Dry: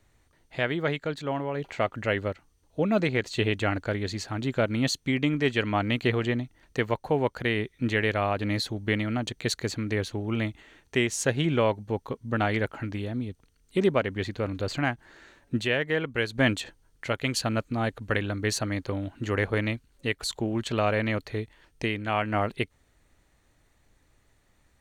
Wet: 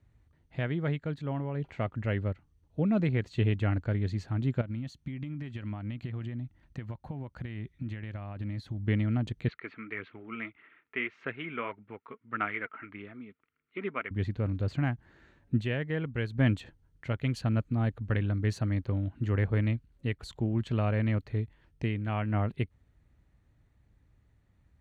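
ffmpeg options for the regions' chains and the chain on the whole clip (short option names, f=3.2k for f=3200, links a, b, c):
-filter_complex "[0:a]asettb=1/sr,asplit=3[a][b][c];[a]atrim=end=4.614[d];[b]atrim=start=4.61:end=8.86,asetpts=PTS-STARTPTS,afade=t=in:d=0.004:c=qsin,afade=t=out:st=4.246:d=0.004:c=qsin,equalizer=f=440:t=o:w=0.21:g=-11.5,acompressor=threshold=-33dB:ratio=8:attack=3.2:release=140:knee=1:detection=peak[e];[c]atrim=start=8.856[f];[d][e]acrossfade=d=0.004:c1=hsin:c2=qsin[g];[g][f]acrossfade=d=0.004:c1=qsin:c2=hsin,asettb=1/sr,asplit=3[h][i][j];[h]atrim=end=9.484[k];[i]atrim=start=9.48:end=14.11,asetpts=PTS-STARTPTS,afade=t=in:d=0.004:c=qsin,afade=t=out:st=4.626:d=0.004:c=qsin,aphaser=in_gain=1:out_gain=1:delay=4.7:decay=0.39:speed=1.7:type=sinusoidal,highpass=490,equalizer=f=550:t=q:w=4:g=-9,equalizer=f=810:t=q:w=4:g=-8,equalizer=f=1.3k:t=q:w=4:g=9,equalizer=f=2.2k:t=q:w=4:g=8,lowpass=f=2.9k:w=0.5412,lowpass=f=2.9k:w=1.3066[l];[j]atrim=start=14.106[m];[k][l]acrossfade=d=0.004:c1=hsin:c2=qsin[n];[n][m]acrossfade=d=0.004:c1=qsin:c2=hsin,highpass=47,bass=f=250:g=14,treble=f=4k:g=-10,volume=-9dB"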